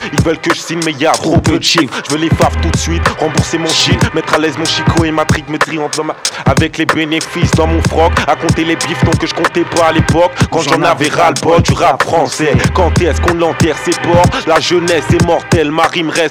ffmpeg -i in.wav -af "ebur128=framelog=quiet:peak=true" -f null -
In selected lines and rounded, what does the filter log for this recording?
Integrated loudness:
  I:         -11.4 LUFS
  Threshold: -21.4 LUFS
Loudness range:
  LRA:         2.0 LU
  Threshold: -31.4 LUFS
  LRA low:   -12.5 LUFS
  LRA high:  -10.5 LUFS
True peak:
  Peak:       -1.3 dBFS